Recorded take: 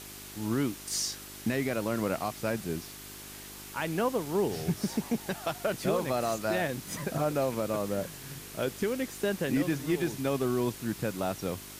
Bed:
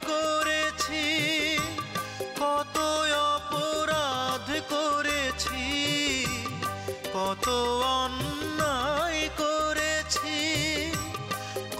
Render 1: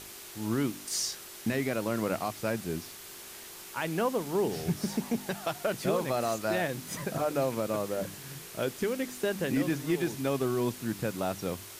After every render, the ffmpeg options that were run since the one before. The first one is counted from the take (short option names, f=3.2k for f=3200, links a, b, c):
-af "bandreject=f=50:t=h:w=4,bandreject=f=100:t=h:w=4,bandreject=f=150:t=h:w=4,bandreject=f=200:t=h:w=4,bandreject=f=250:t=h:w=4,bandreject=f=300:t=h:w=4"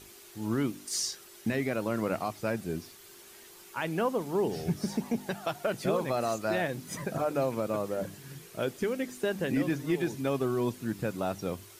-af "afftdn=nr=8:nf=-46"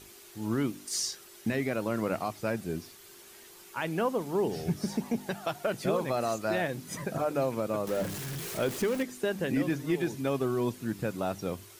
-filter_complex "[0:a]asettb=1/sr,asplit=3[a][b][c];[a]atrim=end=7.874[d];[b]atrim=start=7.87:end=9.03,asetpts=PTS-STARTPTS,afade=t=in:d=0.004:c=qsin,afade=t=out:st=1.156:d=0.004:c=qsin,aeval=exprs='val(0)+0.5*0.02*sgn(val(0))':c=same[e];[c]atrim=start=9.026[f];[d][e]acrossfade=d=0.004:c1=hsin:c2=qsin[g];[g][f]acrossfade=d=0.004:c1=qsin:c2=hsin"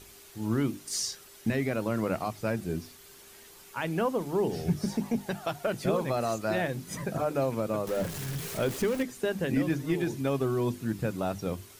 -af "lowshelf=f=140:g=8,bandreject=f=50:t=h:w=6,bandreject=f=100:t=h:w=6,bandreject=f=150:t=h:w=6,bandreject=f=200:t=h:w=6,bandreject=f=250:t=h:w=6,bandreject=f=300:t=h:w=6,bandreject=f=350:t=h:w=6"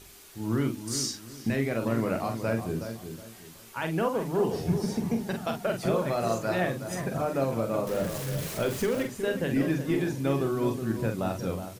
-filter_complex "[0:a]asplit=2[a][b];[b]adelay=44,volume=-6dB[c];[a][c]amix=inputs=2:normalize=0,asplit=2[d][e];[e]adelay=368,lowpass=f=1.5k:p=1,volume=-8.5dB,asplit=2[f][g];[g]adelay=368,lowpass=f=1.5k:p=1,volume=0.31,asplit=2[h][i];[i]adelay=368,lowpass=f=1.5k:p=1,volume=0.31,asplit=2[j][k];[k]adelay=368,lowpass=f=1.5k:p=1,volume=0.31[l];[d][f][h][j][l]amix=inputs=5:normalize=0"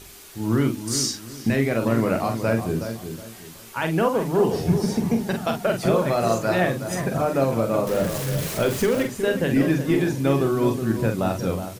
-af "volume=6.5dB"